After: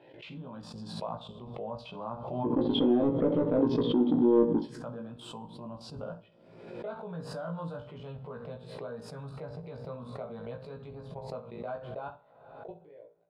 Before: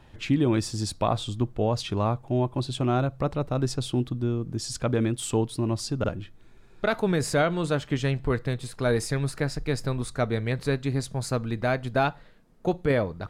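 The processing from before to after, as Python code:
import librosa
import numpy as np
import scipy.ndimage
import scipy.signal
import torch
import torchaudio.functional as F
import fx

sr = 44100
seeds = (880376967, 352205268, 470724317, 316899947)

y = fx.fade_out_tail(x, sr, length_s=3.39)
y = scipy.signal.sosfilt(scipy.signal.ellip(4, 1.0, 50, 150.0, 'highpass', fs=sr, output='sos'), y)
y = fx.level_steps(y, sr, step_db=18)
y = fx.small_body(y, sr, hz=(280.0, 440.0, 3200.0), ring_ms=25, db=17, at=(2.43, 4.65), fade=0.02)
y = fx.env_phaser(y, sr, low_hz=200.0, high_hz=1600.0, full_db=-21.5)
y = 10.0 ** (-19.5 / 20.0) * np.tanh(y / 10.0 ** (-19.5 / 20.0))
y = fx.air_absorb(y, sr, metres=450.0)
y = fx.doubler(y, sr, ms=17.0, db=-3.0)
y = fx.room_early_taps(y, sr, ms=(19, 65), db=(-6.0, -13.5))
y = fx.rev_double_slope(y, sr, seeds[0], early_s=0.51, late_s=3.7, knee_db=-21, drr_db=12.5)
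y = fx.pre_swell(y, sr, db_per_s=52.0)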